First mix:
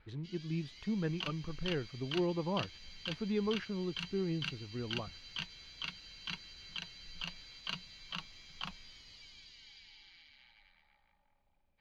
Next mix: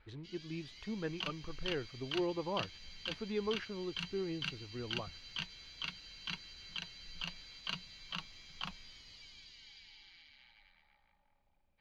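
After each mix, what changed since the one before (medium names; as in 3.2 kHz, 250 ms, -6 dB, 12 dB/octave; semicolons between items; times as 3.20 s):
speech: add peaking EQ 170 Hz -9 dB 0.96 oct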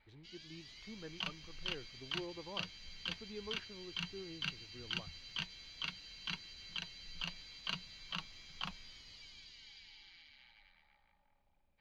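speech -10.5 dB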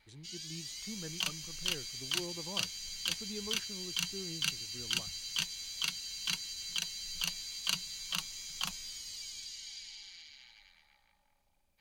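speech: add peaking EQ 170 Hz +9 dB 0.96 oct; master: remove distance through air 310 m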